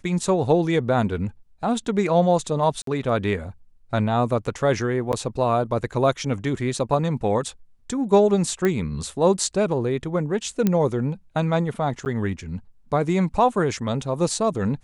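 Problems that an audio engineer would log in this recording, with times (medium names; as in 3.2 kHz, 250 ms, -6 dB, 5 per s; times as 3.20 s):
2.82–2.87 s: dropout 53 ms
5.12–5.13 s: dropout 9.6 ms
8.65 s: pop -10 dBFS
10.67 s: pop -8 dBFS
12.05–12.06 s: dropout 9.4 ms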